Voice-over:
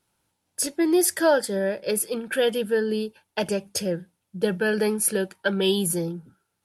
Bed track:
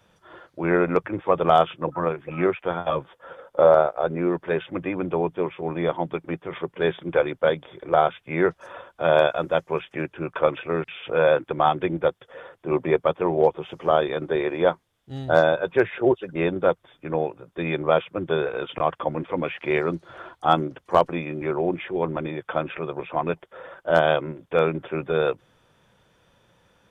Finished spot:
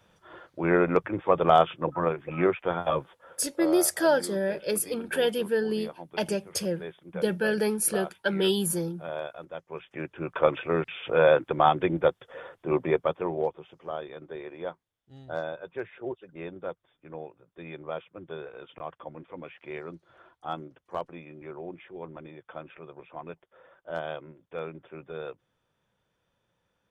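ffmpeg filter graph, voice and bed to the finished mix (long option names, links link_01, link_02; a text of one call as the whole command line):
ffmpeg -i stem1.wav -i stem2.wav -filter_complex "[0:a]adelay=2800,volume=-3dB[link_01];[1:a]volume=14dB,afade=type=out:start_time=2.96:duration=0.48:silence=0.177828,afade=type=in:start_time=9.65:duration=0.89:silence=0.158489,afade=type=out:start_time=12.49:duration=1.23:silence=0.188365[link_02];[link_01][link_02]amix=inputs=2:normalize=0" out.wav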